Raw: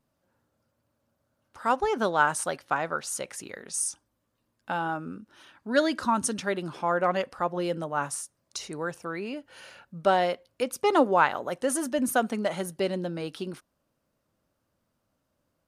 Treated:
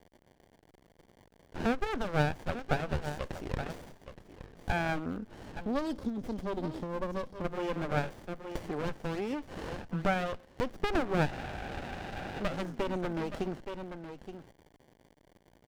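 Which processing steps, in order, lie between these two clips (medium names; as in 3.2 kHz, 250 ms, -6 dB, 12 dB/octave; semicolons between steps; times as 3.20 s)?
treble shelf 3.6 kHz +3 dB; delay 870 ms -17.5 dB; compression 3:1, threshold -40 dBFS, peak gain reduction 18 dB; bit crusher 11-bit; graphic EQ with 31 bands 800 Hz +6 dB, 1.6 kHz +7 dB, 4 kHz -9 dB; time-frequency box 5.60–7.45 s, 640–3100 Hz -28 dB; low-pass 5.6 kHz 24 dB/octave; crackle 290 per s -51 dBFS; spectral noise reduction 12 dB; spectral freeze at 11.31 s, 1.11 s; sliding maximum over 33 samples; trim +9 dB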